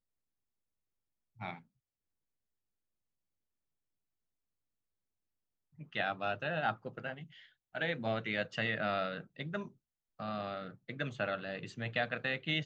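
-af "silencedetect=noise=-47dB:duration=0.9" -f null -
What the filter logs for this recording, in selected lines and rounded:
silence_start: 0.00
silence_end: 1.40 | silence_duration: 1.40
silence_start: 1.59
silence_end: 5.79 | silence_duration: 4.21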